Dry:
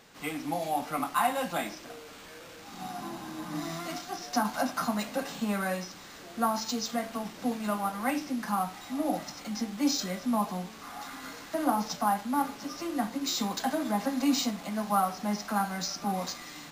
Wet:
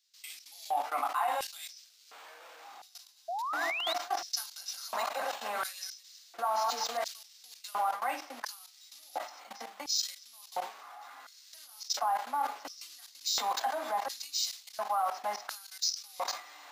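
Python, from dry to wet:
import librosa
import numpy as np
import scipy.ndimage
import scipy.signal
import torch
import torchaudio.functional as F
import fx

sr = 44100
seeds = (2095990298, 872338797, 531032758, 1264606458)

y = fx.reverse_delay(x, sr, ms=134, wet_db=-2.5, at=(4.56, 7.08))
y = scipy.signal.sosfilt(scipy.signal.butter(4, 240.0, 'highpass', fs=sr, output='sos'), y)
y = fx.peak_eq(y, sr, hz=8700.0, db=-4.0, octaves=1.6)
y = fx.level_steps(y, sr, step_db=19)
y = fx.filter_lfo_highpass(y, sr, shape='square', hz=0.71, low_hz=770.0, high_hz=4800.0, q=1.9)
y = fx.spec_paint(y, sr, seeds[0], shape='rise', start_s=3.28, length_s=0.66, low_hz=650.0, high_hz=4100.0, level_db=-39.0)
y = fx.sustainer(y, sr, db_per_s=140.0)
y = y * librosa.db_to_amplitude(4.5)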